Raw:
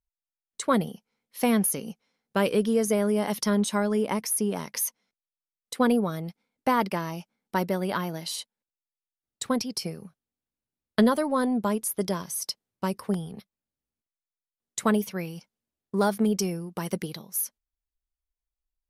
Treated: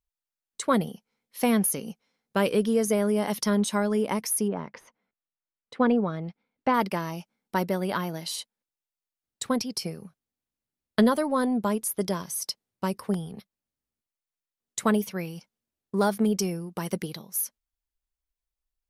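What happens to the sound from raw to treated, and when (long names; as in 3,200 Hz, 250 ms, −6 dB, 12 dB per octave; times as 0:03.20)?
0:04.47–0:06.73: low-pass filter 1,500 Hz → 3,600 Hz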